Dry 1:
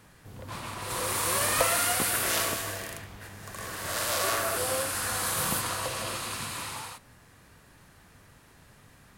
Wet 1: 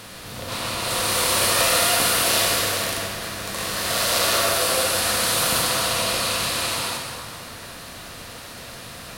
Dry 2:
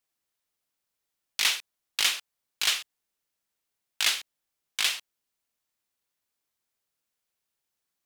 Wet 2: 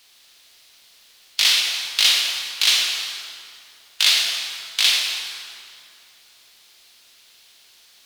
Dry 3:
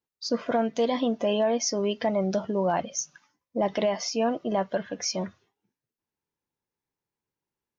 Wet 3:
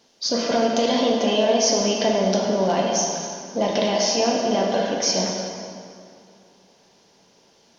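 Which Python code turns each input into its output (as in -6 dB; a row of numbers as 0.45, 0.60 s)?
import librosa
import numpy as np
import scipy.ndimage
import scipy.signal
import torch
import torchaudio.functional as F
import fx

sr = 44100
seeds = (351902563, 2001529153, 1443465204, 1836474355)

y = fx.bin_compress(x, sr, power=0.6)
y = fx.curve_eq(y, sr, hz=(1800.0, 4200.0, 7200.0), db=(0, 9, 2))
y = fx.rev_plate(y, sr, seeds[0], rt60_s=2.5, hf_ratio=0.7, predelay_ms=0, drr_db=-1.0)
y = y * librosa.db_to_amplitude(-1.0)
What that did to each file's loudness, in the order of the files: +8.0, +9.0, +6.5 LU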